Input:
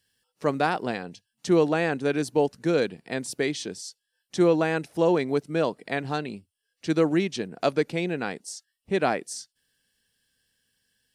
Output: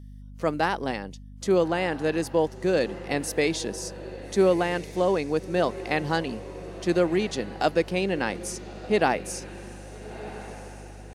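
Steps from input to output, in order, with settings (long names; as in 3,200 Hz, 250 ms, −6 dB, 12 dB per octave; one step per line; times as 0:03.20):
speech leveller within 3 dB 0.5 s
pitch shifter +1.5 semitones
mains hum 50 Hz, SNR 16 dB
feedback delay with all-pass diffusion 1,327 ms, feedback 45%, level −15 dB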